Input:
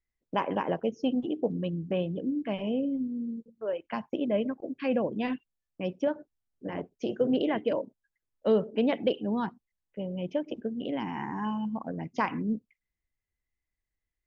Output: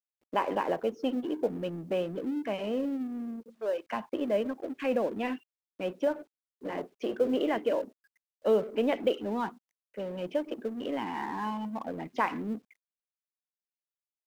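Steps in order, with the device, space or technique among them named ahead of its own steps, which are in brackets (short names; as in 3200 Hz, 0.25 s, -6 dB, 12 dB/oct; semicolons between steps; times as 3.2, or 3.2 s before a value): phone line with mismatched companding (BPF 300–3300 Hz; G.711 law mismatch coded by mu)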